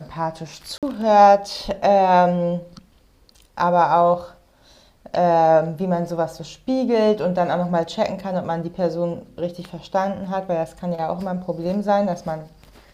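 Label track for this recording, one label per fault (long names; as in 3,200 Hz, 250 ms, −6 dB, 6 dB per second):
0.780000	0.830000	drop-out 47 ms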